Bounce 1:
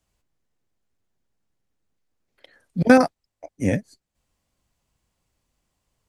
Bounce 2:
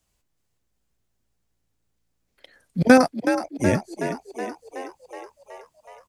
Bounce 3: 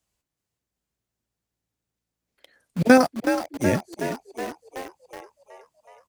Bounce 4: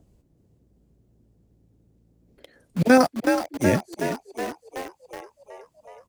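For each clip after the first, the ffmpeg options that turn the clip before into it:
ffmpeg -i in.wav -filter_complex "[0:a]highshelf=frequency=4100:gain=5.5,asplit=2[link_01][link_02];[link_02]asplit=8[link_03][link_04][link_05][link_06][link_07][link_08][link_09][link_10];[link_03]adelay=372,afreqshift=56,volume=-9dB[link_11];[link_04]adelay=744,afreqshift=112,volume=-12.9dB[link_12];[link_05]adelay=1116,afreqshift=168,volume=-16.8dB[link_13];[link_06]adelay=1488,afreqshift=224,volume=-20.6dB[link_14];[link_07]adelay=1860,afreqshift=280,volume=-24.5dB[link_15];[link_08]adelay=2232,afreqshift=336,volume=-28.4dB[link_16];[link_09]adelay=2604,afreqshift=392,volume=-32.3dB[link_17];[link_10]adelay=2976,afreqshift=448,volume=-36.1dB[link_18];[link_11][link_12][link_13][link_14][link_15][link_16][link_17][link_18]amix=inputs=8:normalize=0[link_19];[link_01][link_19]amix=inputs=2:normalize=0" out.wav
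ffmpeg -i in.wav -filter_complex "[0:a]highpass=frequency=74:poles=1,asplit=2[link_01][link_02];[link_02]acrusher=bits=4:mix=0:aa=0.000001,volume=-4dB[link_03];[link_01][link_03]amix=inputs=2:normalize=0,volume=-5dB" out.wav
ffmpeg -i in.wav -filter_complex "[0:a]acrossover=split=500|3200[link_01][link_02][link_03];[link_01]acompressor=mode=upward:threshold=-41dB:ratio=2.5[link_04];[link_04][link_02][link_03]amix=inputs=3:normalize=0,alimiter=level_in=6dB:limit=-1dB:release=50:level=0:latency=1,volume=-4.5dB" out.wav

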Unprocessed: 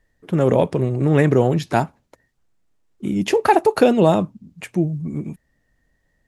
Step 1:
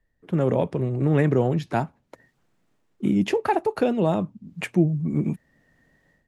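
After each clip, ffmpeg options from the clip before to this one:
ffmpeg -i in.wav -filter_complex "[0:a]bass=frequency=250:gain=3,treble=frequency=4000:gain=-6,acrossover=split=120[link_01][link_02];[link_02]dynaudnorm=framelen=170:gausssize=3:maxgain=16dB[link_03];[link_01][link_03]amix=inputs=2:normalize=0,volume=-8.5dB" out.wav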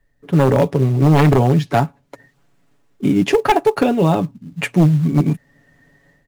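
ffmpeg -i in.wav -filter_complex "[0:a]aecho=1:1:7.1:0.6,asplit=2[link_01][link_02];[link_02]acrusher=bits=4:mode=log:mix=0:aa=0.000001,volume=-8dB[link_03];[link_01][link_03]amix=inputs=2:normalize=0,aeval=exprs='0.355*(abs(mod(val(0)/0.355+3,4)-2)-1)':channel_layout=same,volume=4dB" out.wav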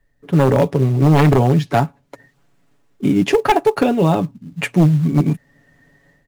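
ffmpeg -i in.wav -af anull out.wav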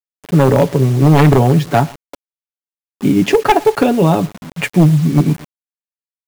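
ffmpeg -i in.wav -af "aecho=1:1:116|232:0.0668|0.0167,acrusher=bits=5:mix=0:aa=0.000001,volume=3dB" out.wav

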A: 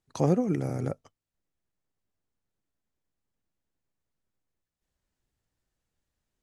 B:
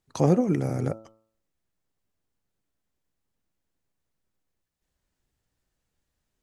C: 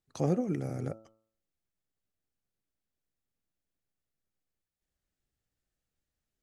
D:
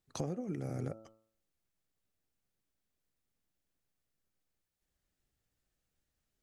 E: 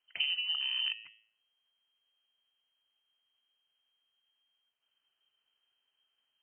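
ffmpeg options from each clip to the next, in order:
ffmpeg -i in.wav -af "bandreject=frequency=110.6:width_type=h:width=4,bandreject=frequency=221.2:width_type=h:width=4,bandreject=frequency=331.8:width_type=h:width=4,bandreject=frequency=442.4:width_type=h:width=4,bandreject=frequency=553:width_type=h:width=4,bandreject=frequency=663.6:width_type=h:width=4,bandreject=frequency=774.2:width_type=h:width=4,bandreject=frequency=884.8:width_type=h:width=4,bandreject=frequency=995.4:width_type=h:width=4,bandreject=frequency=1106:width_type=h:width=4,bandreject=frequency=1216.6:width_type=h:width=4,bandreject=frequency=1327.2:width_type=h:width=4,bandreject=frequency=1437.8:width_type=h:width=4,volume=3.5dB" out.wav
ffmpeg -i in.wav -af "equalizer=frequency=970:width_type=o:width=0.21:gain=-8.5,volume=-8dB" out.wav
ffmpeg -i in.wav -af "acompressor=threshold=-36dB:ratio=16,volume=2.5dB" out.wav
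ffmpeg -i in.wav -af "lowpass=frequency=2700:width_type=q:width=0.5098,lowpass=frequency=2700:width_type=q:width=0.6013,lowpass=frequency=2700:width_type=q:width=0.9,lowpass=frequency=2700:width_type=q:width=2.563,afreqshift=-3200,volume=4.5dB" out.wav

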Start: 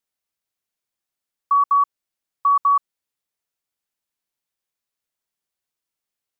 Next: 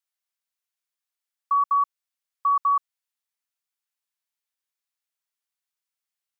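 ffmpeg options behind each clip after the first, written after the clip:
ffmpeg -i in.wav -af "highpass=900,volume=-3dB" out.wav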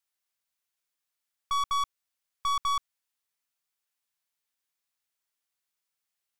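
ffmpeg -i in.wav -af "aeval=exprs='(tanh(31.6*val(0)+0.4)-tanh(0.4))/31.6':channel_layout=same,volume=4dB" out.wav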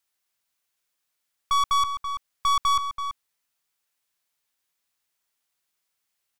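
ffmpeg -i in.wav -filter_complex "[0:a]asplit=2[link_01][link_02];[link_02]adelay=332.4,volume=-8dB,highshelf=frequency=4000:gain=-7.48[link_03];[link_01][link_03]amix=inputs=2:normalize=0,volume=6dB" out.wav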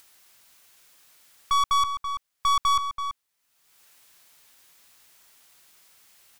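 ffmpeg -i in.wav -af "acompressor=mode=upward:threshold=-39dB:ratio=2.5" out.wav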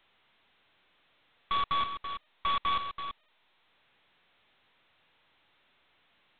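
ffmpeg -i in.wav -af "volume=-8dB" -ar 8000 -c:a adpcm_g726 -b:a 16k out.wav

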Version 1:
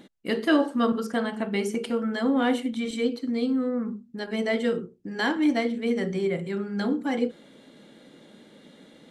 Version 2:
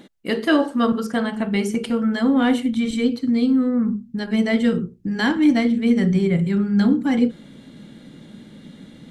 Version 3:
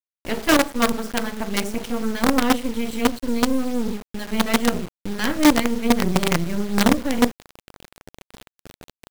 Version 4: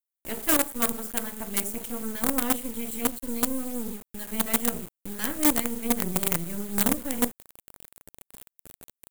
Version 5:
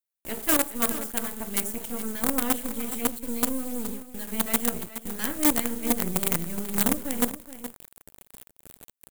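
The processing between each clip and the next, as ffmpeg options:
ffmpeg -i in.wav -af "asubboost=boost=6.5:cutoff=180,volume=4.5dB" out.wav
ffmpeg -i in.wav -af "acrusher=bits=3:dc=4:mix=0:aa=0.000001" out.wav
ffmpeg -i in.wav -af "aexciter=amount=6.6:drive=3.4:freq=7300,volume=-9.5dB" out.wav
ffmpeg -i in.wav -af "aecho=1:1:420:0.237" out.wav

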